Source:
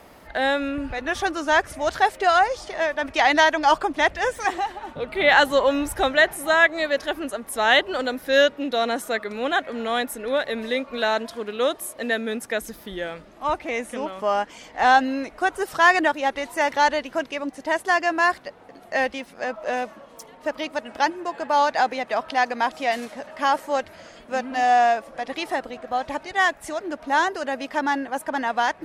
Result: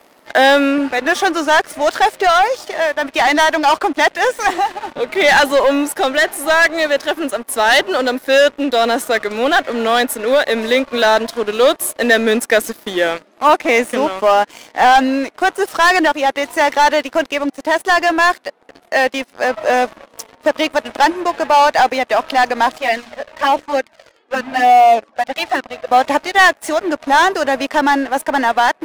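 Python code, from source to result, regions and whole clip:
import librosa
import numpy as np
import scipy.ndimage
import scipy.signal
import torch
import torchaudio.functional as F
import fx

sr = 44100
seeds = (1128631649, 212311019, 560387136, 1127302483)

y = fx.chain(x, sr, fx.lowpass(hz=4800.0, slope=12),
    fx.hum_notches(base_hz=60, count=7),
    fx.env_flanger(rest_ms=2.8, full_db=-16.5), at=(22.78, 25.87))
y = scipy.signal.sosfilt(scipy.signal.butter(4, 220.0, 'highpass', fs=sr, output='sos'), y)
y = fx.leveller(y, sr, passes=3)
y = fx.rider(y, sr, range_db=10, speed_s=2.0)
y = y * librosa.db_to_amplitude(-1.0)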